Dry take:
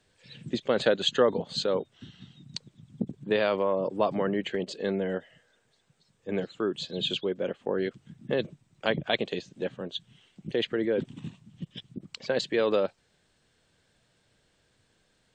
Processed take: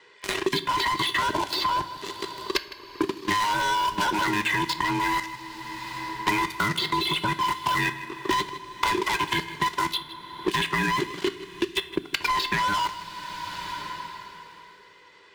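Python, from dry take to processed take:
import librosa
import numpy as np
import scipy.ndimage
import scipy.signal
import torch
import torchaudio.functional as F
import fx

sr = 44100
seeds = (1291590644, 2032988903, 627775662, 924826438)

p1 = fx.band_invert(x, sr, width_hz=500)
p2 = fx.bandpass_edges(p1, sr, low_hz=200.0, high_hz=5400.0)
p3 = fx.peak_eq(p2, sr, hz=1700.0, db=10.0, octaves=1.9)
p4 = p3 + 0.57 * np.pad(p3, (int(2.0 * sr / 1000.0), 0))[:len(p3)]
p5 = fx.leveller(p4, sr, passes=5)
p6 = fx.level_steps(p5, sr, step_db=20)
p7 = p6 + fx.echo_single(p6, sr, ms=156, db=-18.5, dry=0)
p8 = fx.rev_double_slope(p7, sr, seeds[0], early_s=0.37, late_s=2.9, knee_db=-18, drr_db=9.0)
p9 = fx.band_squash(p8, sr, depth_pct=100)
y = p9 * 10.0 ** (-5.0 / 20.0)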